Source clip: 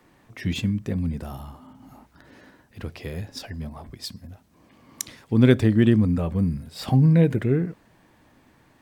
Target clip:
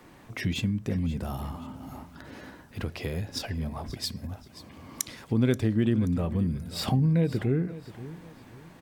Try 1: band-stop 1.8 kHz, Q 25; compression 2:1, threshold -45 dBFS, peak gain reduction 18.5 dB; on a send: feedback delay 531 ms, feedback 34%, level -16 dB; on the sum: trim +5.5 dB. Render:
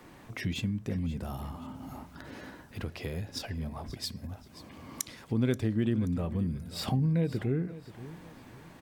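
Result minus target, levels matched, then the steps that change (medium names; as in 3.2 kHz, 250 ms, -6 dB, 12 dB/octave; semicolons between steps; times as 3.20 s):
compression: peak gain reduction +4 dB
change: compression 2:1, threshold -37 dBFS, peak gain reduction 14.5 dB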